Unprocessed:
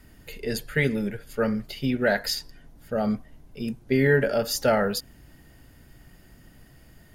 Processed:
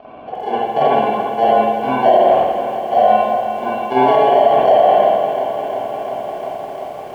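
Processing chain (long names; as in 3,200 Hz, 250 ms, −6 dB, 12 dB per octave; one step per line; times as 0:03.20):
adaptive Wiener filter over 15 samples
low-shelf EQ 150 Hz −10 dB
hum removal 157.5 Hz, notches 4
in parallel at −2.5 dB: upward compression, threshold −24 dBFS
on the sum: decimation without filtering 35×
formant filter a
high-frequency loss of the air 220 metres
tape delay 127 ms, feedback 58%, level −15 dB, low-pass 1,800 Hz
spring reverb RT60 1.1 s, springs 46/54 ms, chirp 40 ms, DRR −8 dB
boost into a limiter +17 dB
feedback echo at a low word length 350 ms, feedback 80%, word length 7 bits, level −11 dB
level −2.5 dB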